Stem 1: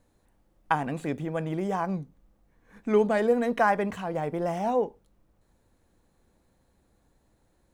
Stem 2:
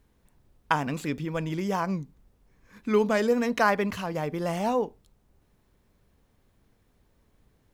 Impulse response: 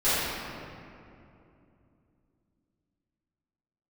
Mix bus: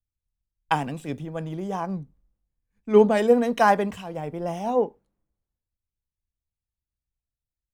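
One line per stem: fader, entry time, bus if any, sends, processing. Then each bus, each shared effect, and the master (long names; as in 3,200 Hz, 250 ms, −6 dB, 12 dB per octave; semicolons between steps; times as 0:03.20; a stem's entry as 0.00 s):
+0.5 dB, 0.00 s, no send, no processing
−12.5 dB, 0.00 s, no send, no processing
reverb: not used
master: multiband upward and downward expander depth 100%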